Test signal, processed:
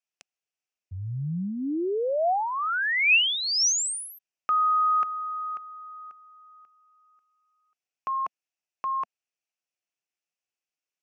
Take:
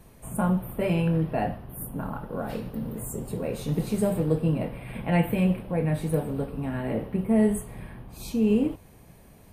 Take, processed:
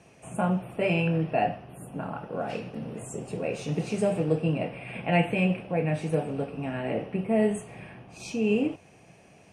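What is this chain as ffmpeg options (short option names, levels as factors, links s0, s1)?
-af "highpass=140,equalizer=f=230:t=q:w=4:g=-5,equalizer=f=710:t=q:w=4:g=5,equalizer=f=1000:t=q:w=4:g=-4,equalizer=f=2600:t=q:w=4:g=10,equalizer=f=3900:t=q:w=4:g=-5,equalizer=f=5700:t=q:w=4:g=6,lowpass=f=8200:w=0.5412,lowpass=f=8200:w=1.3066"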